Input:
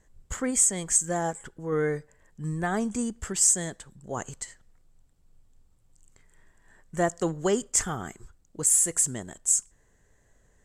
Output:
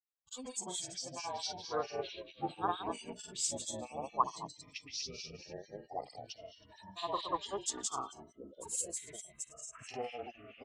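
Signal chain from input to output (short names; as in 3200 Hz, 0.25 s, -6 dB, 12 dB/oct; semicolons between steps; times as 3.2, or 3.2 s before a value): recorder AGC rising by 7.2 dB/s; double band-pass 2000 Hz, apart 1.8 oct; frequency-shifting echo 0.161 s, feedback 40%, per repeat -51 Hz, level -8 dB; spectral noise reduction 29 dB; echoes that change speed 0.101 s, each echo -6 st, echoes 3, each echo -6 dB; grains 0.1 s, grains 20/s, pitch spread up and down by 0 st; harmonic tremolo 4.5 Hz, depth 100%, crossover 2000 Hz; gain +11 dB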